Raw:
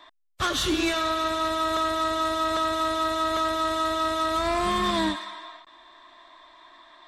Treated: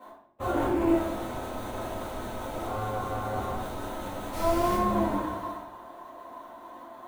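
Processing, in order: 2.65–3.55 s: cycle switcher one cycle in 3, muted; sample-rate reducer 5 kHz, jitter 20%; ten-band graphic EQ 250 Hz +5 dB, 2 kHz -5 dB, 8 kHz -9 dB; overdrive pedal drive 23 dB, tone 1.4 kHz, clips at -15 dBFS; high-order bell 2.7 kHz -11 dB 2.6 oct; comb of notches 160 Hz; 4.32–4.75 s: added noise pink -36 dBFS; reverberation RT60 0.70 s, pre-delay 4 ms, DRR -7 dB; trim -8.5 dB

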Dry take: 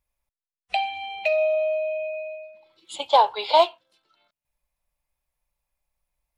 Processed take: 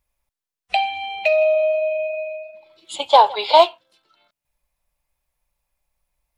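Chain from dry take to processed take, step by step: 1.23–3.36 s: modulated delay 166 ms, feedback 33%, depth 79 cents, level -21.5 dB; trim +5 dB

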